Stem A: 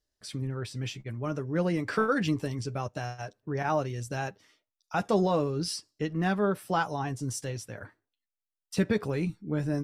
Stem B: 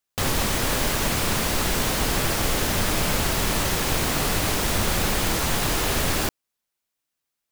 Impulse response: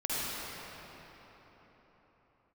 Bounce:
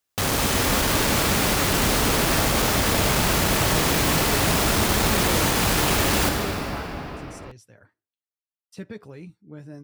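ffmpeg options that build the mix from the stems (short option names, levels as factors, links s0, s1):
-filter_complex "[0:a]volume=0.282[s0];[1:a]asoftclip=type=hard:threshold=0.0841,volume=0.944,asplit=2[s1][s2];[s2]volume=0.531[s3];[2:a]atrim=start_sample=2205[s4];[s3][s4]afir=irnorm=-1:irlink=0[s5];[s0][s1][s5]amix=inputs=3:normalize=0,highpass=46"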